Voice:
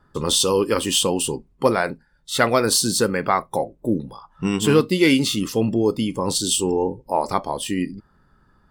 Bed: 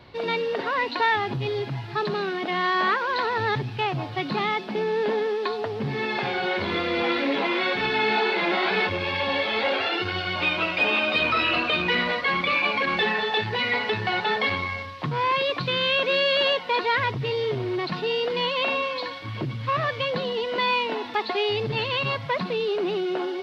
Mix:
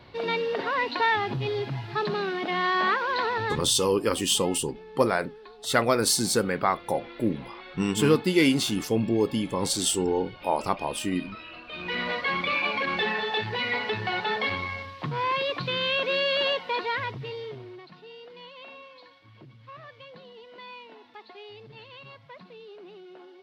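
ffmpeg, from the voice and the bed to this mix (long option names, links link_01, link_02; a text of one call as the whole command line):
ffmpeg -i stem1.wav -i stem2.wav -filter_complex "[0:a]adelay=3350,volume=-4.5dB[link_01];[1:a]volume=15.5dB,afade=type=out:start_time=3.29:duration=0.57:silence=0.112202,afade=type=in:start_time=11.67:duration=0.47:silence=0.141254,afade=type=out:start_time=16.55:duration=1.31:silence=0.141254[link_02];[link_01][link_02]amix=inputs=2:normalize=0" out.wav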